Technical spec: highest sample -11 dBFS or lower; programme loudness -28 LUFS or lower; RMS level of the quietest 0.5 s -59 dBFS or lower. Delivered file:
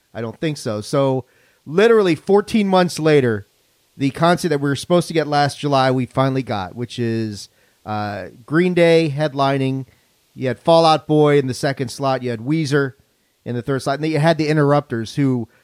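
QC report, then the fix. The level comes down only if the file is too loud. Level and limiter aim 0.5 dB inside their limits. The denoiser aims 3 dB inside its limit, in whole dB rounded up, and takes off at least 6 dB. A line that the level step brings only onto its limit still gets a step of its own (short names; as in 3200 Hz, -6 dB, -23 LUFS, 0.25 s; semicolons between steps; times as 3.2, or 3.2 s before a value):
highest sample -2.0 dBFS: fail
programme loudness -18.0 LUFS: fail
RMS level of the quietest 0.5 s -60 dBFS: OK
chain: gain -10.5 dB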